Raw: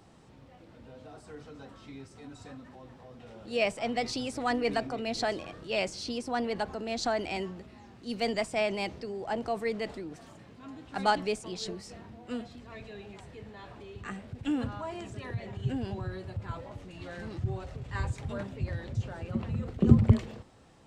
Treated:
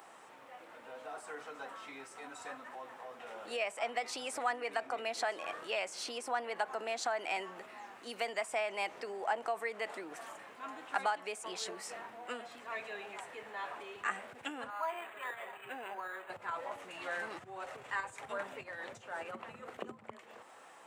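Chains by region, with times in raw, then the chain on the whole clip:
0:14.70–0:16.30: high-pass filter 970 Hz 6 dB per octave + linearly interpolated sample-rate reduction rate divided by 8×
whole clip: downward compressor 12 to 1, threshold −36 dBFS; high-pass filter 910 Hz 12 dB per octave; parametric band 4,600 Hz −13.5 dB 1.4 octaves; level +12 dB

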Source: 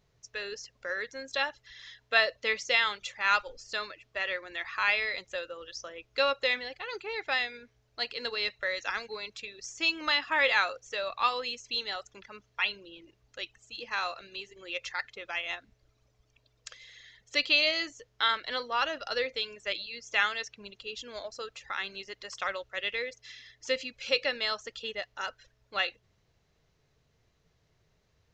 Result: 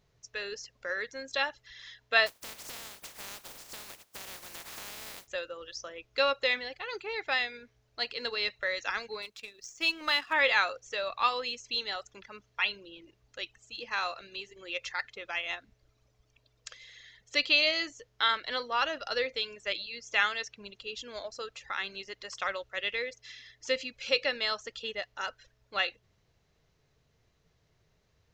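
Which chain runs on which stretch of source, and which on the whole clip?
0:02.26–0:05.26: compressing power law on the bin magnitudes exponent 0.12 + parametric band 660 Hz +3 dB 1.4 octaves + downward compressor 8 to 1, threshold −40 dBFS
0:09.22–0:10.33: mu-law and A-law mismatch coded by A + parametric band 91 Hz −5.5 dB 1.4 octaves
whole clip: no processing

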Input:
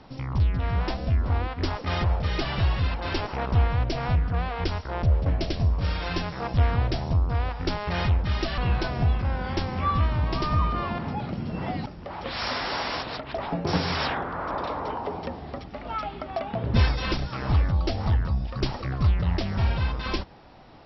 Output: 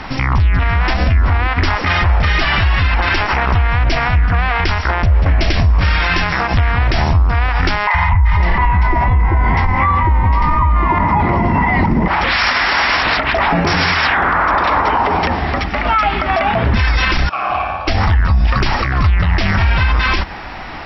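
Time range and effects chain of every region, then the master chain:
0:07.87–0:12.08: tilt shelving filter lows +9.5 dB, about 1,200 Hz + hollow resonant body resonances 960/2,000 Hz, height 18 dB, ringing for 35 ms + three-band delay without the direct sound highs, lows, mids 70/500 ms, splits 150/730 Hz
0:17.29–0:17.88: formant filter a + flutter between parallel walls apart 9.5 metres, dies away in 1.1 s
whole clip: octave-band graphic EQ 125/250/500/2,000/4,000 Hz −9/−4/−9/+7/−5 dB; downward compressor, threshold −29 dBFS; boost into a limiter +29 dB; level −4.5 dB

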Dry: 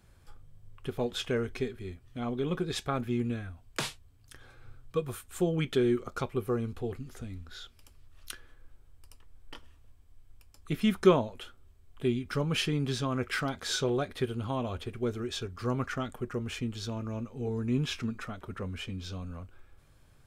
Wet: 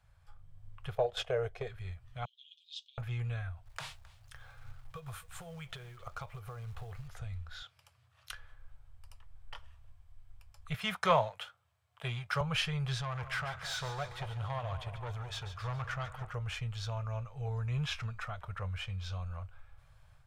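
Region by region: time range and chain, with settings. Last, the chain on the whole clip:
0:00.95–0:01.67: noise gate −37 dBFS, range −9 dB + flat-topped bell 510 Hz +13.5 dB 1.3 octaves + downward compressor 3 to 1, threshold −21 dBFS
0:02.25–0:02.98: Butterworth high-pass 2,900 Hz 96 dB per octave + high-frequency loss of the air 160 metres
0:03.65–0:07.08: log-companded quantiser 6 bits + downward compressor, threshold −37 dBFS + single-tap delay 265 ms −21 dB
0:07.62–0:08.31: high-pass filter 110 Hz 24 dB per octave + high-shelf EQ 12,000 Hz −3.5 dB
0:10.74–0:12.41: Bessel high-pass filter 170 Hz, order 8 + parametric band 370 Hz −4 dB 0.35 octaves + leveller curve on the samples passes 1
0:13.01–0:16.35: tube saturation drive 30 dB, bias 0.4 + echo with a time of its own for lows and highs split 1,100 Hz, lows 211 ms, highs 141 ms, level −11 dB
whole clip: Chebyshev band-stop filter 120–690 Hz, order 2; high-shelf EQ 4,800 Hz −9.5 dB; automatic gain control gain up to 6 dB; level −4 dB

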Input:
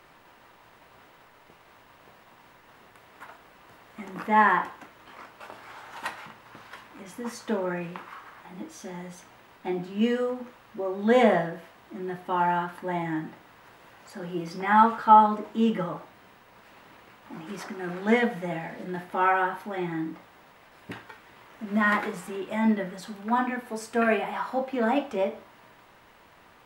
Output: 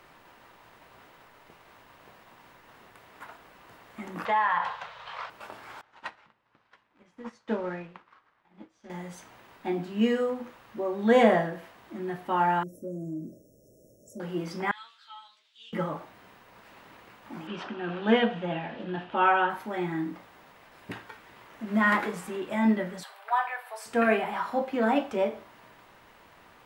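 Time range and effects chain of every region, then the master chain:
0:04.25–0:05.30: drawn EQ curve 170 Hz 0 dB, 320 Hz −29 dB, 450 Hz +3 dB, 1,000 Hz +9 dB, 2,100 Hz +6 dB, 3,800 Hz +12 dB, 14,000 Hz −17 dB + downward compressor, threshold −22 dBFS
0:05.81–0:08.90: mu-law and A-law mismatch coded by A + low-pass filter 4,700 Hz + expander for the loud parts, over −53 dBFS
0:12.63–0:14.20: linear-phase brick-wall band-stop 660–5,300 Hz + downward compressor 2 to 1, threshold −35 dBFS
0:14.71–0:15.73: four-pole ladder band-pass 4,200 Hz, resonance 55% + double-tracking delay 13 ms −2.5 dB
0:17.47–0:19.50: low-pass with resonance 2,900 Hz, resonance Q 3.2 + parametric band 2,100 Hz −12 dB 0.4 octaves
0:23.03–0:23.86: Butterworth high-pass 600 Hz + parametric band 6,400 Hz −8.5 dB 0.55 octaves
whole clip: no processing

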